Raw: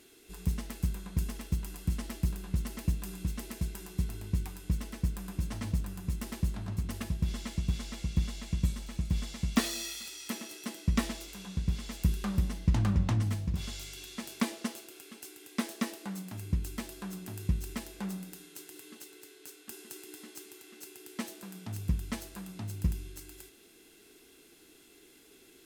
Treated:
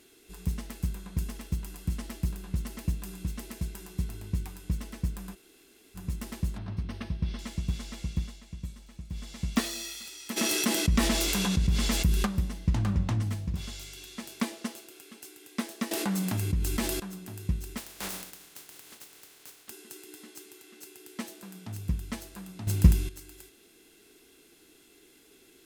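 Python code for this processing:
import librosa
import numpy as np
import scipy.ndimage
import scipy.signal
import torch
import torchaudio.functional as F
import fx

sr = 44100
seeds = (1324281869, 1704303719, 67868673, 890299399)

y = fx.savgol(x, sr, points=15, at=(6.58, 7.39))
y = fx.env_flatten(y, sr, amount_pct=70, at=(10.36, 12.25), fade=0.02)
y = fx.env_flatten(y, sr, amount_pct=70, at=(15.91, 17.0))
y = fx.spec_flatten(y, sr, power=0.36, at=(17.77, 19.69), fade=0.02)
y = fx.edit(y, sr, fx.room_tone_fill(start_s=5.35, length_s=0.6, crossfade_s=0.02),
    fx.fade_down_up(start_s=8.08, length_s=1.34, db=-9.5, fade_s=0.33),
    fx.clip_gain(start_s=22.67, length_s=0.42, db=11.5), tone=tone)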